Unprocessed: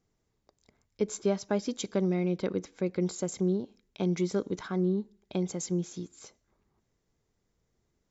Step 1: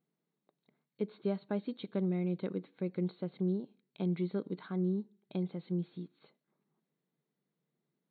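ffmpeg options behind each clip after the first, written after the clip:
-af "lowshelf=f=170:g=12,afftfilt=real='re*between(b*sr/4096,130,4400)':imag='im*between(b*sr/4096,130,4400)':win_size=4096:overlap=0.75,volume=0.355"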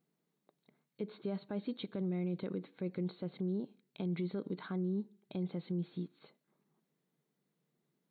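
-af "alimiter=level_in=2.37:limit=0.0631:level=0:latency=1:release=54,volume=0.422,volume=1.41"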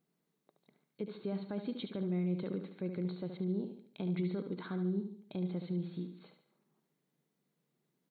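-af "aecho=1:1:72|144|216|288|360:0.398|0.171|0.0736|0.0317|0.0136"

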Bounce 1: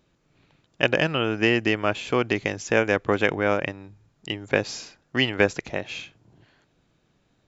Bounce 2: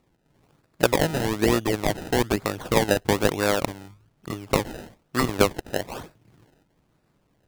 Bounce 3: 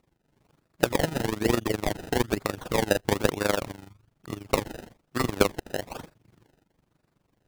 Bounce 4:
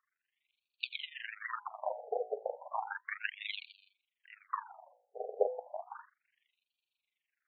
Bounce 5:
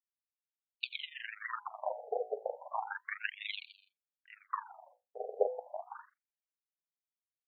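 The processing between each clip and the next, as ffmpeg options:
-af "acrusher=samples=27:mix=1:aa=0.000001:lfo=1:lforange=27:lforate=1.1"
-af "tremolo=f=24:d=0.824"
-af "bandreject=f=56.07:t=h:w=4,bandreject=f=112.14:t=h:w=4,bandreject=f=168.21:t=h:w=4,bandreject=f=224.28:t=h:w=4,bandreject=f=280.35:t=h:w=4,bandreject=f=336.42:t=h:w=4,bandreject=f=392.49:t=h:w=4,bandreject=f=448.56:t=h:w=4,bandreject=f=504.63:t=h:w=4,bandreject=f=560.7:t=h:w=4,bandreject=f=616.77:t=h:w=4,bandreject=f=672.84:t=h:w=4,bandreject=f=728.91:t=h:w=4,bandreject=f=784.98:t=h:w=4,bandreject=f=841.05:t=h:w=4,bandreject=f=897.12:t=h:w=4,bandreject=f=953.19:t=h:w=4,bandreject=f=1009.26:t=h:w=4,afftfilt=real='re*between(b*sr/1024,570*pow(3300/570,0.5+0.5*sin(2*PI*0.33*pts/sr))/1.41,570*pow(3300/570,0.5+0.5*sin(2*PI*0.33*pts/sr))*1.41)':imag='im*between(b*sr/1024,570*pow(3300/570,0.5+0.5*sin(2*PI*0.33*pts/sr))/1.41,570*pow(3300/570,0.5+0.5*sin(2*PI*0.33*pts/sr))*1.41)':win_size=1024:overlap=0.75,volume=0.708"
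-af "agate=range=0.0224:threshold=0.00112:ratio=3:detection=peak"

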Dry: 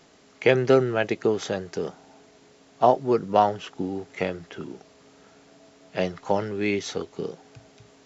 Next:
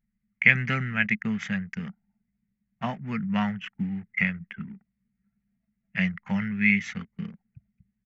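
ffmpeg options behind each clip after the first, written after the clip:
-af "anlmdn=1,firequalizer=gain_entry='entry(130,0);entry(210,9);entry(310,-26);entry(2000,13);entry(3900,-13);entry(6300,-9)':delay=0.05:min_phase=1"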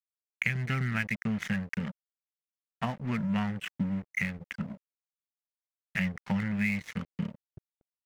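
-filter_complex "[0:a]acrossover=split=120[s0][s1];[s1]acompressor=threshold=0.0224:ratio=6[s2];[s0][s2]amix=inputs=2:normalize=0,aeval=exprs='sgn(val(0))*max(abs(val(0))-0.00473,0)':c=same,volume=1.78"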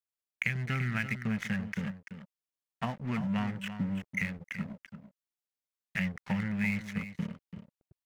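-af "aecho=1:1:338:0.299,volume=0.794"

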